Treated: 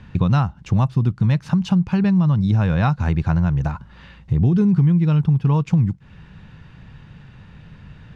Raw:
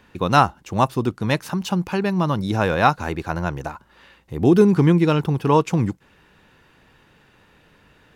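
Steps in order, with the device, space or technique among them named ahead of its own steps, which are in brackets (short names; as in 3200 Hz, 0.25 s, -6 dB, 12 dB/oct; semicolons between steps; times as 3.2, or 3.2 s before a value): jukebox (LPF 5400 Hz 12 dB/oct; resonant low shelf 230 Hz +13 dB, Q 1.5; compressor 5:1, threshold -19 dBFS, peak gain reduction 17 dB); gain +3.5 dB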